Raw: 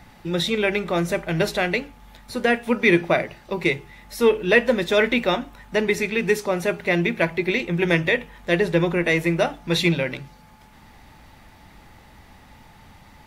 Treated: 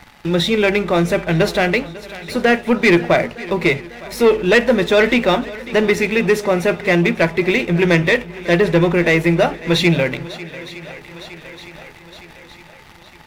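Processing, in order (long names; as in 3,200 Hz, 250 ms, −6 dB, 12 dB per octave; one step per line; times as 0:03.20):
high-shelf EQ 4,900 Hz −7 dB
leveller curve on the samples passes 2
on a send: feedback echo with a long and a short gap by turns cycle 912 ms, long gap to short 1.5 to 1, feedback 46%, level −19.5 dB
on the sum: one half of a high-frequency compander encoder only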